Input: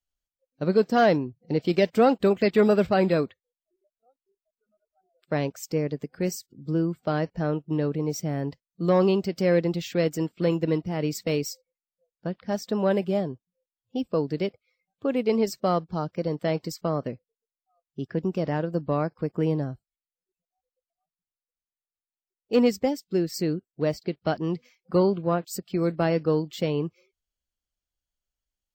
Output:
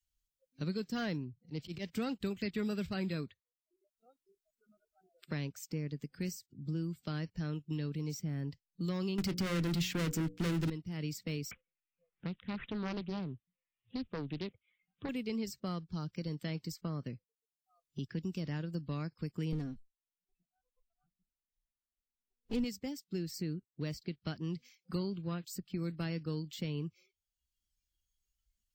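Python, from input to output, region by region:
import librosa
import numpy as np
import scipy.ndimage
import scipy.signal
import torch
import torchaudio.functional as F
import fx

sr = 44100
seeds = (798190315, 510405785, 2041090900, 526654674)

y = fx.chain(x, sr, fx.auto_swell(attack_ms=120.0),
    fx.doppler_dist(depth_ms=0.1), at=(1.23, 1.95))
y = fx.chain(y, sr, fx.leveller(passes=5),
    fx.hum_notches(base_hz=60, count=9), at=(9.18, 10.7))
y = fx.chain(y, sr, fx.resample_bad(factor=6, down='none', up='filtered'),
    fx.doppler_dist(depth_ms=0.45), at=(11.51, 15.09))
y = fx.chain(y, sr, fx.lower_of_two(delay_ms=4.2),
    fx.tilt_eq(slope=-2.5),
    fx.notch(hz=4700.0, q=19.0), at=(19.52, 22.64))
y = fx.noise_reduce_blind(y, sr, reduce_db=12)
y = fx.tone_stack(y, sr, knobs='6-0-2')
y = fx.band_squash(y, sr, depth_pct=70)
y = F.gain(torch.from_numpy(y), 7.0).numpy()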